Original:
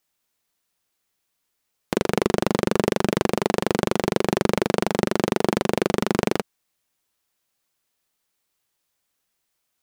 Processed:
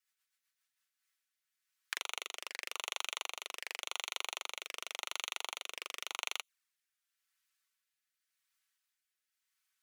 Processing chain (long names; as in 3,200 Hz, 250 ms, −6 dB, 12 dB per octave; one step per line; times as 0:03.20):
rotating-speaker cabinet horn 8 Hz, later 0.9 Hz, at 0:00.35
four-pole ladder high-pass 1,200 Hz, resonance 35%
flanger swept by the level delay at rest 5.4 ms, full sweep at −39 dBFS
level +4.5 dB